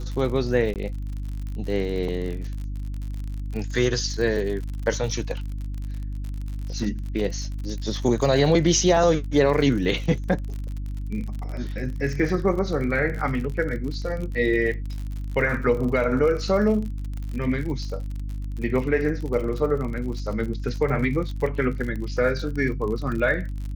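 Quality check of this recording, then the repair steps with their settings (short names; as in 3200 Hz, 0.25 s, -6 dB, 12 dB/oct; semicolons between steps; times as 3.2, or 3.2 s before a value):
crackle 55/s -31 dBFS
hum 50 Hz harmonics 6 -30 dBFS
0.74–0.76 gap 18 ms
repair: de-click; de-hum 50 Hz, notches 6; interpolate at 0.74, 18 ms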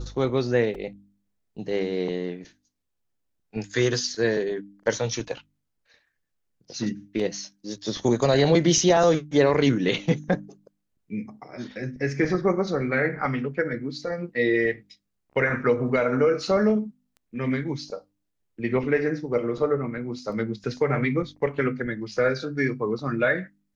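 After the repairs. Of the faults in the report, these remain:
none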